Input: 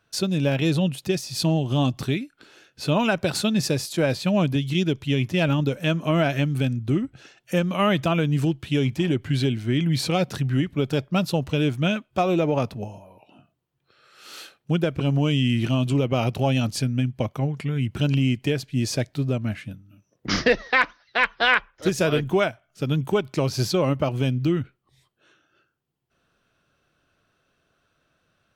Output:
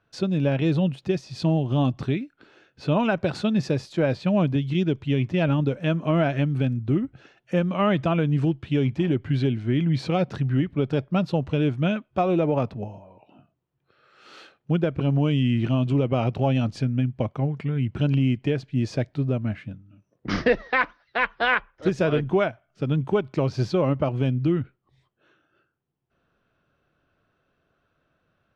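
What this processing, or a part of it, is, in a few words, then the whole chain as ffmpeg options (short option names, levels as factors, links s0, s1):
through cloth: -af "lowpass=6500,highshelf=f=3500:g=-15"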